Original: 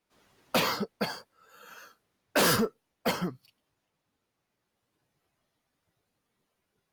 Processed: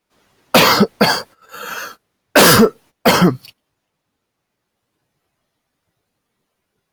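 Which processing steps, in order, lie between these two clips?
gate -58 dBFS, range -16 dB; maximiser +23.5 dB; gain -1 dB

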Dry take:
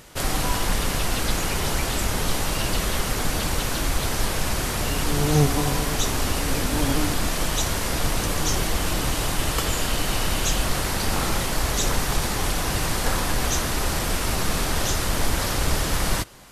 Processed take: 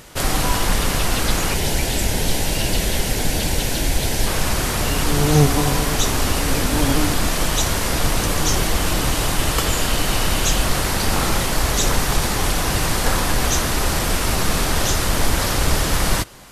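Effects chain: 1.54–4.27 bell 1200 Hz -14.5 dB 0.43 oct; gain +4.5 dB

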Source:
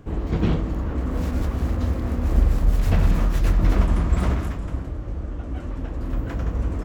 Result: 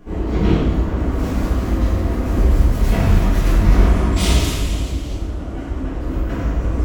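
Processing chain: 4.16–5.13 resonant high shelf 2300 Hz +14 dB, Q 1.5; two-slope reverb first 0.93 s, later 2.9 s, DRR -8.5 dB; gain -2.5 dB

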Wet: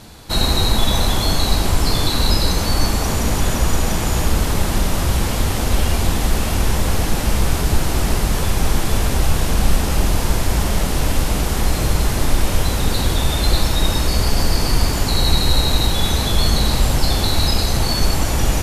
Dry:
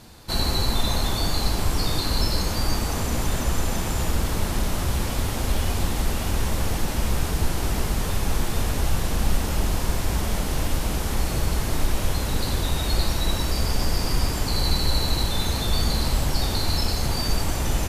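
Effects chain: speed mistake 25 fps video run at 24 fps; gain +6.5 dB

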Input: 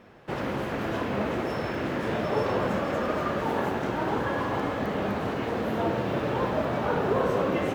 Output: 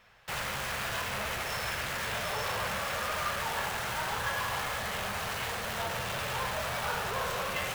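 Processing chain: notches 50/100/150 Hz; in parallel at -8 dB: companded quantiser 2-bit; on the sum: passive tone stack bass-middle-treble 10-0-10; gain +3 dB

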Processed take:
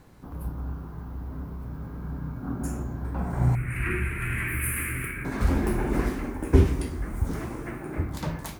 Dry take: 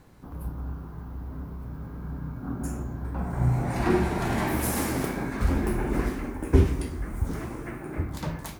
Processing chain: 3.55–5.25 EQ curve 120 Hz 0 dB, 200 Hz -13 dB, 370 Hz -11 dB, 800 Hz -27 dB, 1300 Hz -2 dB, 2500 Hz +8 dB, 3700 Hz -20 dB, 5800 Hz -26 dB, 9700 Hz +3 dB, 14000 Hz -3 dB; gain +1 dB

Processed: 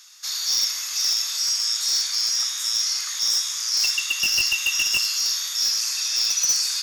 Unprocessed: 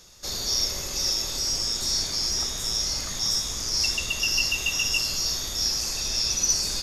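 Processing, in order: HPF 1200 Hz 24 dB/oct; in parallel at -8 dB: wrapped overs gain 17 dB; on the sum: gain +1 dB

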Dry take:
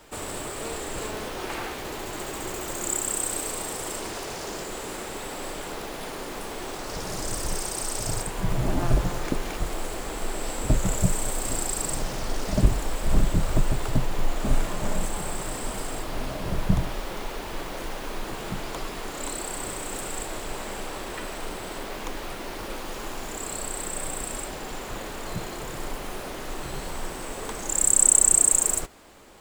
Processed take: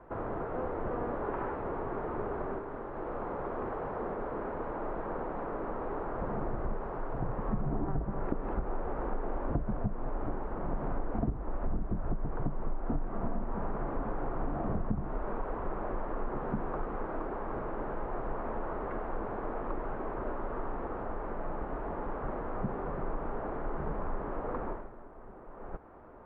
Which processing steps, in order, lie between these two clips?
dynamic EQ 230 Hz, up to +4 dB, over -40 dBFS, Q 1.5; compressor 16:1, threshold -27 dBFS, peak gain reduction 18 dB; LPF 1200 Hz 24 dB/oct; varispeed +12%

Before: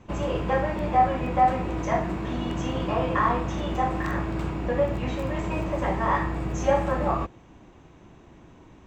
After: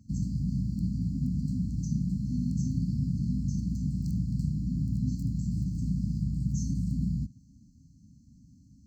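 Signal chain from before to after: HPF 51 Hz; dynamic EQ 150 Hz, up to +7 dB, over -42 dBFS, Q 0.92; brick-wall FIR band-stop 280–4100 Hz; gain -2.5 dB

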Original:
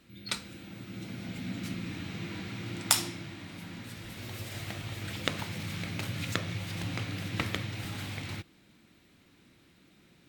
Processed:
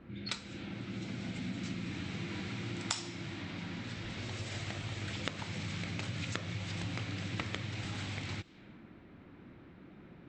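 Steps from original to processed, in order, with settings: low-pass opened by the level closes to 1200 Hz, open at -35.5 dBFS; brick-wall FIR low-pass 8200 Hz; compressor 2.5:1, threshold -50 dBFS, peak gain reduction 19.5 dB; gain +8.5 dB

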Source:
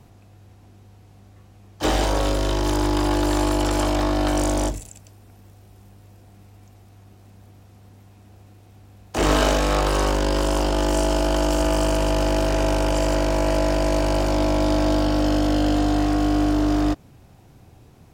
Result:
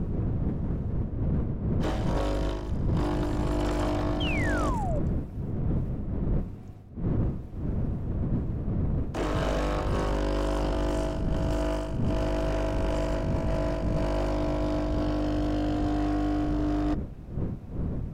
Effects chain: wind noise 160 Hz -18 dBFS; high shelf 3400 Hz -11.5 dB; notch 820 Hz, Q 12; reverse; compressor 20:1, threshold -22 dBFS, peak gain reduction 24.5 dB; reverse; painted sound fall, 4.2–5, 540–3300 Hz -33 dBFS; in parallel at -7.5 dB: hard clip -29.5 dBFS, distortion -7 dB; on the sum: gain -2.5 dB

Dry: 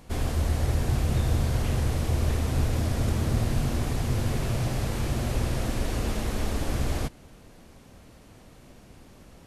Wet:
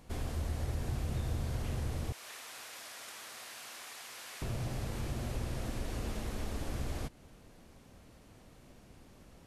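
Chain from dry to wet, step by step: 2.12–4.42 HPF 1300 Hz 12 dB/oct; compressor 1.5:1, threshold -32 dBFS, peak gain reduction 5 dB; gain -6.5 dB

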